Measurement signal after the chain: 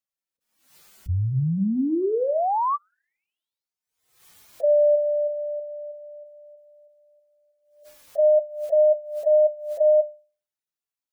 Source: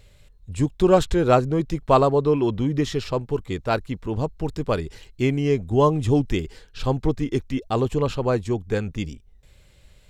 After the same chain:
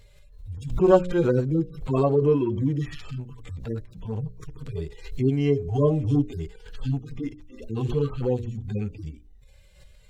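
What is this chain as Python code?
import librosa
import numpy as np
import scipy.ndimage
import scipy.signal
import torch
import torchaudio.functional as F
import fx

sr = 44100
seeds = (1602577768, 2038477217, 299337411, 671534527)

y = fx.hpss_only(x, sr, part='harmonic')
y = fx.hum_notches(y, sr, base_hz=60, count=10)
y = fx.pre_swell(y, sr, db_per_s=89.0)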